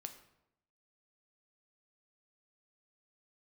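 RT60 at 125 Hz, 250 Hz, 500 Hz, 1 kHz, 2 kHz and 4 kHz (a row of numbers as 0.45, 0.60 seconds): 0.95, 0.90, 0.85, 0.80, 0.70, 0.55 seconds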